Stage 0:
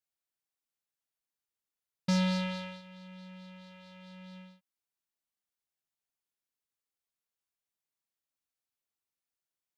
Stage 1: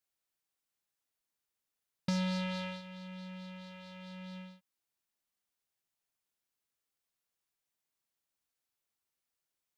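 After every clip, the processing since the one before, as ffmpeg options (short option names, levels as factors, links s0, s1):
-af "acompressor=threshold=0.0178:ratio=4,volume=1.41"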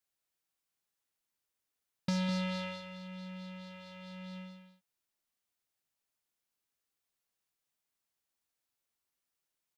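-af "aecho=1:1:204:0.335"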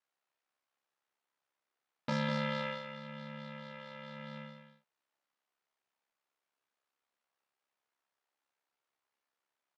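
-filter_complex "[0:a]aeval=exprs='val(0)*sin(2*PI*34*n/s)':c=same,bandpass=f=950:t=q:w=0.7:csg=0,asplit=2[s0][s1];[s1]adelay=33,volume=0.562[s2];[s0][s2]amix=inputs=2:normalize=0,volume=2.82"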